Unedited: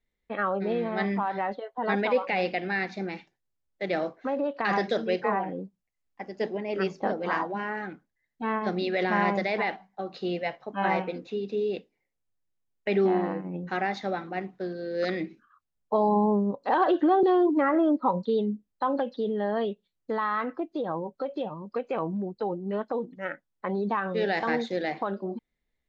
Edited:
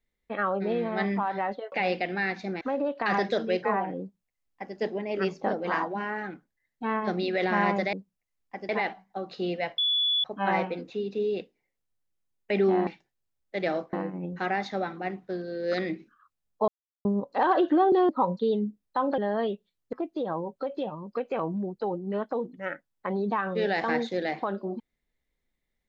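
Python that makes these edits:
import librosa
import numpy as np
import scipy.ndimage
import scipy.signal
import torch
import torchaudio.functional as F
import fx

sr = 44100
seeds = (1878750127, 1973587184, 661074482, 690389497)

y = fx.edit(x, sr, fx.cut(start_s=1.72, length_s=0.53),
    fx.move(start_s=3.14, length_s=1.06, to_s=13.24),
    fx.duplicate(start_s=5.59, length_s=0.76, to_s=9.52),
    fx.insert_tone(at_s=10.61, length_s=0.46, hz=3430.0, db=-22.0),
    fx.silence(start_s=15.99, length_s=0.37),
    fx.cut(start_s=17.4, length_s=0.55),
    fx.cut(start_s=19.04, length_s=0.32),
    fx.cut(start_s=20.11, length_s=0.41), tone=tone)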